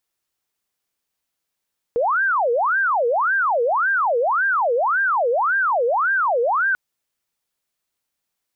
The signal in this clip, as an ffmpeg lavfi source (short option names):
-f lavfi -i "aevalsrc='0.158*sin(2*PI*(1032.5*t-567.5/(2*PI*1.8)*sin(2*PI*1.8*t)))':d=4.79:s=44100"